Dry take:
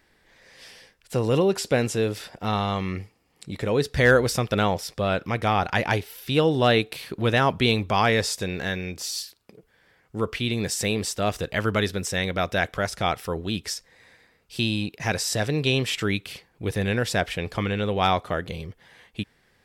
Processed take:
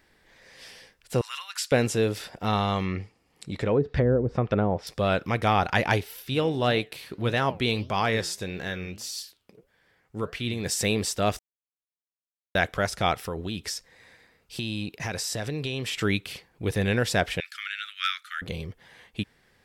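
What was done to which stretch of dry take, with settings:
1.21–1.72 steep high-pass 1200 Hz
2.83–4.87 treble ducked by the level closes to 400 Hz, closed at -16 dBFS
6.22–10.66 flange 1.7 Hz, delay 5.1 ms, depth 7.2 ms, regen +84%
11.39–12.55 mute
13.25–15.99 compressor, threshold -27 dBFS
17.4–18.42 steep high-pass 1300 Hz 96 dB/oct

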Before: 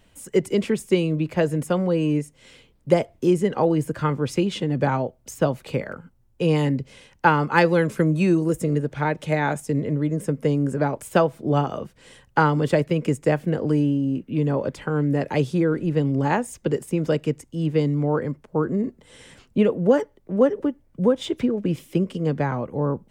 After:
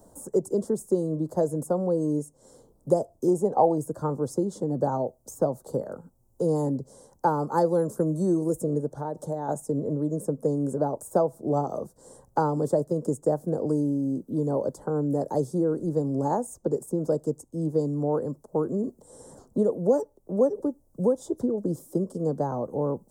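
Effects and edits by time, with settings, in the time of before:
3.28–3.78 bell 770 Hz +11.5 dB
8.9–9.49 compressor 5:1, threshold -25 dBFS
whole clip: Chebyshev band-stop 730–7700 Hz, order 2; low shelf 260 Hz -9.5 dB; three-band squash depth 40%

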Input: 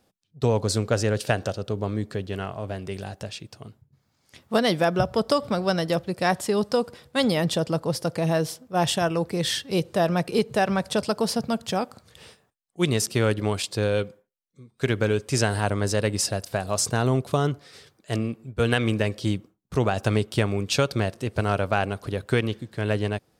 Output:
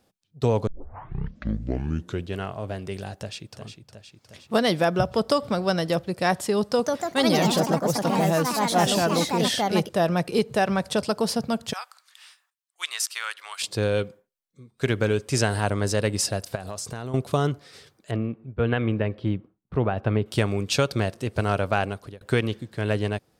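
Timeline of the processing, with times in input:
0.67 tape start 1.69 s
3.18–3.59 echo throw 0.36 s, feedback 65%, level -8 dB
6.63–10.32 echoes that change speed 0.161 s, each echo +3 st, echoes 3
11.73–13.62 HPF 1100 Hz 24 dB/oct
16.55–17.14 compressor, threshold -30 dBFS
18.11–20.26 air absorption 480 m
21.72–22.21 fade out equal-power

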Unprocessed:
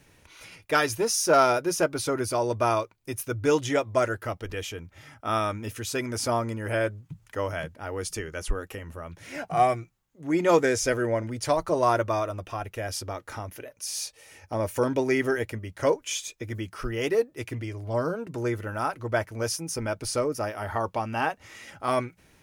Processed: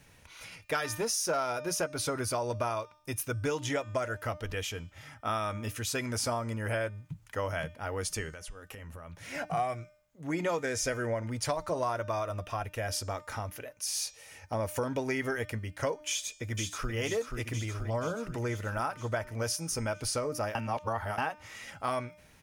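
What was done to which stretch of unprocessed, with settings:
8.32–9.25 compressor 10:1, threshold -40 dBFS
16.09–16.94 echo throw 0.48 s, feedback 65%, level -5 dB
20.55–21.18 reverse
whole clip: bell 350 Hz -7 dB 0.65 oct; de-hum 302.2 Hz, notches 29; compressor 6:1, threshold -28 dBFS

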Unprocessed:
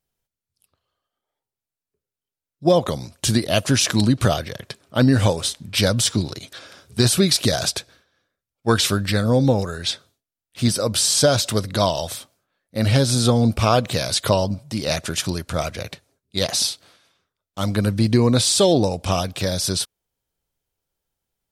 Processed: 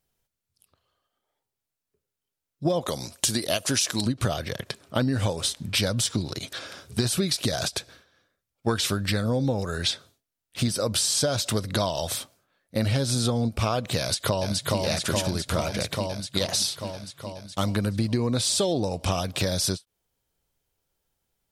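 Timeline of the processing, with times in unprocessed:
2.81–4.06 tone controls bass -7 dB, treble +6 dB
13.99–14.8 echo throw 0.42 s, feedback 70%, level -4 dB
whole clip: compressor, threshold -25 dBFS; ending taper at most 430 dB/s; gain +3 dB

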